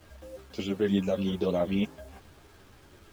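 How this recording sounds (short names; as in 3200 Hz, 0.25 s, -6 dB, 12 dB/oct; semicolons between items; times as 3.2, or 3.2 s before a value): a quantiser's noise floor 10-bit, dither none; a shimmering, thickened sound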